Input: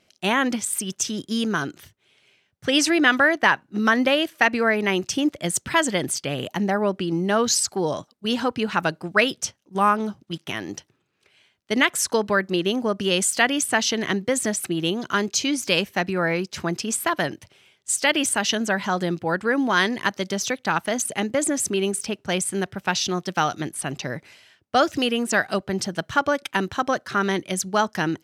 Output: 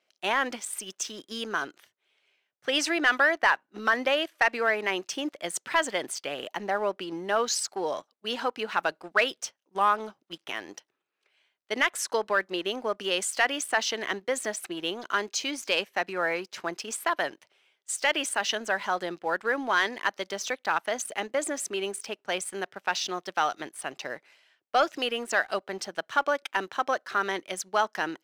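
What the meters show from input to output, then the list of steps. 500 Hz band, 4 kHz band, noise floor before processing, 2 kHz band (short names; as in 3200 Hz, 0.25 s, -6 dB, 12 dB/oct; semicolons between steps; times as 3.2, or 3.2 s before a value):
-5.5 dB, -5.5 dB, -67 dBFS, -4.0 dB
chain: HPF 490 Hz 12 dB/oct; high shelf 4700 Hz -8.5 dB; sample leveller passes 1; gain -6 dB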